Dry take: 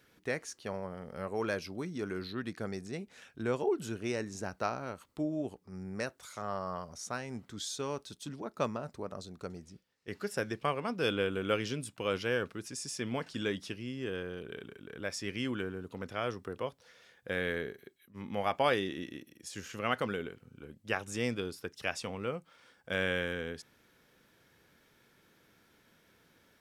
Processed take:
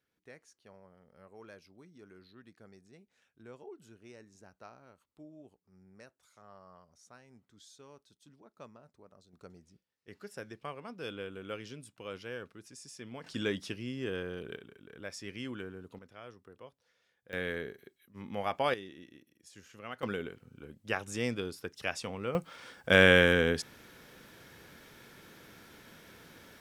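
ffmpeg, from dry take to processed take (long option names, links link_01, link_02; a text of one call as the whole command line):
ffmpeg -i in.wav -af "asetnsamples=nb_out_samples=441:pad=0,asendcmd='9.33 volume volume -10dB;13.24 volume volume 1dB;14.56 volume volume -5.5dB;15.99 volume volume -14.5dB;17.33 volume volume -2dB;18.74 volume volume -11.5dB;20.03 volume volume 0dB;22.35 volume volume 11.5dB',volume=-18dB" out.wav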